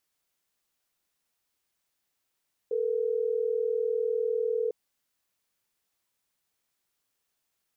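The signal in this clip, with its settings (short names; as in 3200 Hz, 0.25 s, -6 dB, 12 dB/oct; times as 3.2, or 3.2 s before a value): call progress tone ringback tone, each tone -28 dBFS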